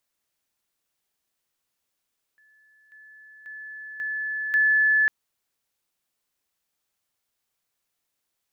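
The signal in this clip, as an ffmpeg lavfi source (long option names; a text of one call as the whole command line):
ffmpeg -f lavfi -i "aevalsrc='pow(10,(-56.5+10*floor(t/0.54))/20)*sin(2*PI*1730*t)':duration=2.7:sample_rate=44100" out.wav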